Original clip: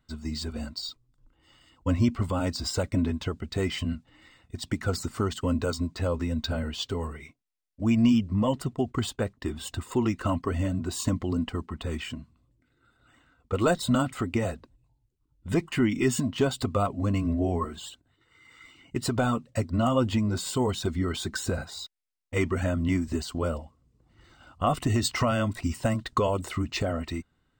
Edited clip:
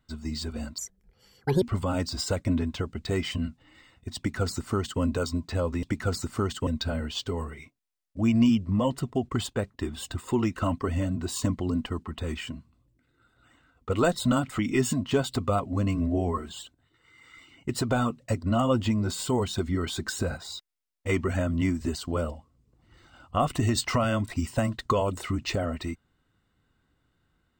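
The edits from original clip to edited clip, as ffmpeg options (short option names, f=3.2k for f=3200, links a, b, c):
-filter_complex "[0:a]asplit=6[a][b][c][d][e][f];[a]atrim=end=0.784[g];[b]atrim=start=0.78:end=2.09,asetpts=PTS-STARTPTS,asetrate=68796,aresample=44100[h];[c]atrim=start=2.086:end=6.302[i];[d]atrim=start=4.638:end=5.482[j];[e]atrim=start=6.298:end=14.222[k];[f]atrim=start=15.858[l];[g][h]acrossfade=d=0.004:c1=hsin:c2=hsin[m];[m][i]acrossfade=d=0.004:c1=hsin:c2=hsin[n];[n][j]acrossfade=d=0.004:c1=hsin:c2=hsin[o];[o][k]acrossfade=d=0.004:c1=hsin:c2=hsin[p];[p][l]acrossfade=d=0.004:c1=hsin:c2=hsin"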